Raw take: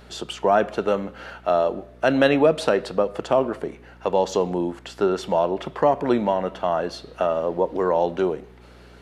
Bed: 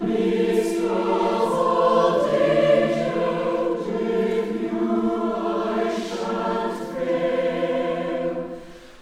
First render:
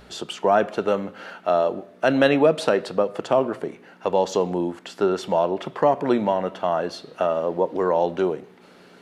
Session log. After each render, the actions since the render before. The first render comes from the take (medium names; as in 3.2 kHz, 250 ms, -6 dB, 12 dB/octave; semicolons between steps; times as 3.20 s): de-hum 60 Hz, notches 2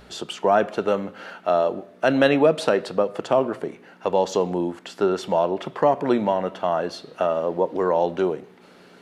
no audible change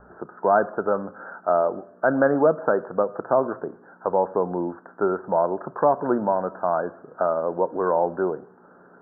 steep low-pass 1.6 kHz 96 dB/octave; tilt shelf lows -3.5 dB, about 760 Hz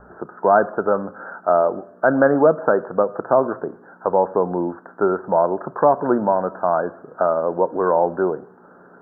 trim +4 dB